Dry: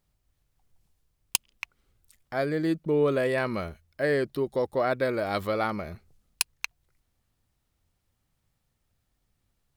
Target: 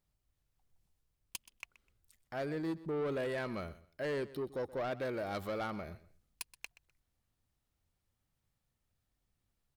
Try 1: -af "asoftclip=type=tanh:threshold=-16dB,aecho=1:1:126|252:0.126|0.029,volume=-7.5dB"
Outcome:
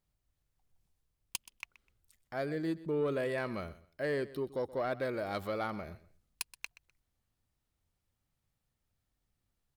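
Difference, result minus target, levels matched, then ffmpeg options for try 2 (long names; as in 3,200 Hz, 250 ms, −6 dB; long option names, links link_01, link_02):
soft clipping: distortion −7 dB
-af "asoftclip=type=tanh:threshold=-24dB,aecho=1:1:126|252:0.126|0.029,volume=-7.5dB"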